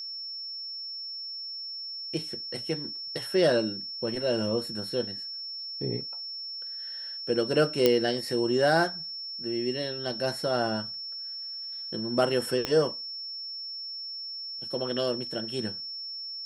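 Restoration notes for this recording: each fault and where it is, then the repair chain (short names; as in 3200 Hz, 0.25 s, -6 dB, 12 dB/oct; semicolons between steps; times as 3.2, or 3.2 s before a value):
tone 5400 Hz -35 dBFS
7.86 pop -7 dBFS
12.65 pop -13 dBFS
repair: de-click; notch 5400 Hz, Q 30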